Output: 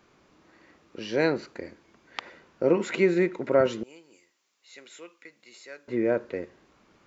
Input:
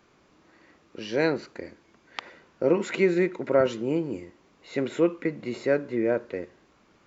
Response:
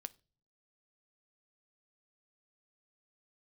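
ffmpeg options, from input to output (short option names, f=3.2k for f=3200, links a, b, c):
-filter_complex "[0:a]asettb=1/sr,asplit=3[a][b][c];[a]atrim=end=3.834[d];[b]atrim=start=3.83:end=5.88,asetpts=PTS-STARTPTS,afade=t=in:d=0.004:c=qsin,afade=t=out:st=2.046:d=0.004:c=qsin,aderivative[e];[c]atrim=start=5.876[f];[d][e]acrossfade=d=0.004:c1=hsin:c2=qsin[g];[g][f]acrossfade=d=0.004:c1=qsin:c2=hsin"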